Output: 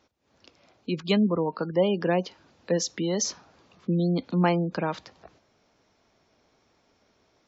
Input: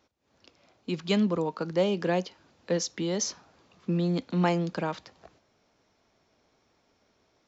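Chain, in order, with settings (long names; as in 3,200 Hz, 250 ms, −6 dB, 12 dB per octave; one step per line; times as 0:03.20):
gate on every frequency bin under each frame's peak −30 dB strong
level +2.5 dB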